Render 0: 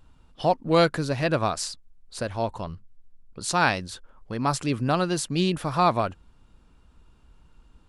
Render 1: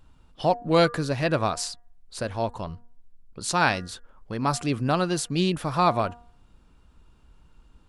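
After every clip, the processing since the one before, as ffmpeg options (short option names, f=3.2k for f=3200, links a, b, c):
-af "bandreject=f=238.2:t=h:w=4,bandreject=f=476.4:t=h:w=4,bandreject=f=714.6:t=h:w=4,bandreject=f=952.8:t=h:w=4,bandreject=f=1.191k:t=h:w=4,bandreject=f=1.4292k:t=h:w=4,bandreject=f=1.6674k:t=h:w=4,bandreject=f=1.9056k:t=h:w=4"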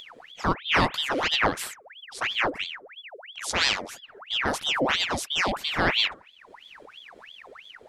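-af "equalizer=f=110:t=o:w=0.34:g=13.5,acompressor=mode=upward:threshold=-35dB:ratio=2.5,aeval=exprs='val(0)*sin(2*PI*1900*n/s+1900*0.8/3*sin(2*PI*3*n/s))':c=same"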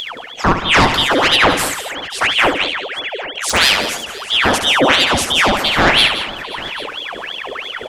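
-af "areverse,acompressor=mode=upward:threshold=-31dB:ratio=2.5,areverse,aeval=exprs='0.398*sin(PI/2*2*val(0)/0.398)':c=same,aecho=1:1:70|172|212|530|797:0.355|0.251|0.126|0.1|0.126,volume=3dB"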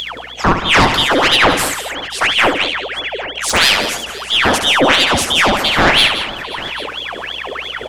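-filter_complex "[0:a]aeval=exprs='val(0)+0.00501*(sin(2*PI*60*n/s)+sin(2*PI*2*60*n/s)/2+sin(2*PI*3*60*n/s)/3+sin(2*PI*4*60*n/s)/4+sin(2*PI*5*60*n/s)/5)':c=same,aeval=exprs='0.891*(cos(1*acos(clip(val(0)/0.891,-1,1)))-cos(1*PI/2))+0.0355*(cos(4*acos(clip(val(0)/0.891,-1,1)))-cos(4*PI/2))':c=same,asplit=2[a][b];[b]asoftclip=type=tanh:threshold=-10.5dB,volume=-9dB[c];[a][c]amix=inputs=2:normalize=0,volume=-1dB"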